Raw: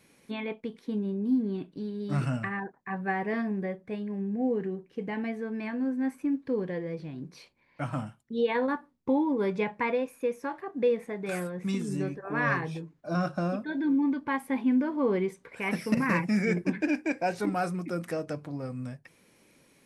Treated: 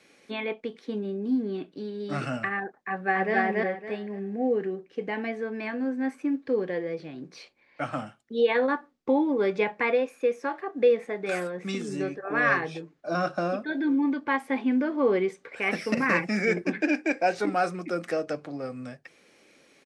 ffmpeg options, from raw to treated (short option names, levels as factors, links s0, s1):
-filter_complex "[0:a]asplit=2[s0][s1];[s1]afade=t=in:st=2.79:d=0.01,afade=t=out:st=3.35:d=0.01,aecho=0:1:280|560|840|1120:1|0.25|0.0625|0.015625[s2];[s0][s2]amix=inputs=2:normalize=0,acrossover=split=280 8000:gain=0.2 1 0.1[s3][s4][s5];[s3][s4][s5]amix=inputs=3:normalize=0,bandreject=f=970:w=6.3,volume=1.88"